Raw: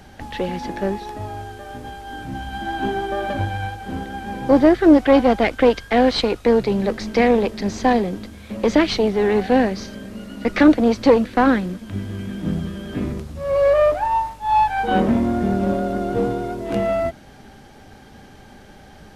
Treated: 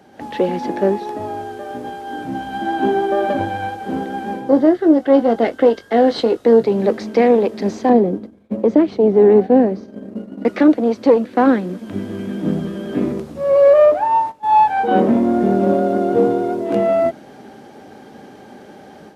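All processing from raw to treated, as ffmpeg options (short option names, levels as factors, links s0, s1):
-filter_complex "[0:a]asettb=1/sr,asplit=3[s0][s1][s2];[s0]atrim=end=4.494[s3];[s1]atrim=start=4.49:end=6.65,asetpts=PTS-STARTPTS,afade=t=in:d=0.004:c=qsin,afade=t=out:st=2.156:d=0.004:c=qsin,equalizer=f=1000:t=o:w=0.38:g=-3,bandreject=f=2400:w=6,asplit=2[s4][s5];[s5]adelay=22,volume=0.282[s6];[s4][s6]amix=inputs=2:normalize=0,atrim=end_sample=95256[s7];[s2]atrim=start=6.646[s8];[s3][s7]acrossfade=d=0.004:c1=hsin:c2=qsin[s9];[s9][s8]acrossfade=d=0.004:c1=qsin:c2=hsin,asettb=1/sr,asplit=3[s10][s11][s12];[s10]atrim=end=7.894[s13];[s11]atrim=start=7.89:end=10.45,asetpts=PTS-STARTPTS,afade=t=in:d=0.004:c=qsin,afade=t=out:st=2.556:d=0.004:c=qsin,tiltshelf=f=1100:g=7.5,agate=range=0.0224:threshold=0.0891:ratio=3:release=100:detection=peak[s14];[s12]atrim=start=10.446[s15];[s13][s14]acrossfade=d=0.004:c1=hsin:c2=qsin[s16];[s16][s15]acrossfade=d=0.004:c1=qsin:c2=hsin,asettb=1/sr,asplit=3[s17][s18][s19];[s17]atrim=end=13.854[s20];[s18]atrim=start=13.85:end=14.98,asetpts=PTS-STARTPTS,afade=t=in:d=0.004:c=qsin,afade=t=out:st=1.126:d=0.004:c=qsin,agate=range=0.251:threshold=0.0251:ratio=16:release=100:detection=peak,highshelf=f=5500:g=-4[s21];[s19]atrim=start=14.976[s22];[s20][s21]acrossfade=d=0.004:c1=hsin:c2=qsin[s23];[s23][s22]acrossfade=d=0.004:c1=qsin:c2=hsin,highpass=340,tiltshelf=f=680:g=8,dynaudnorm=f=120:g=3:m=2.51,volume=0.891"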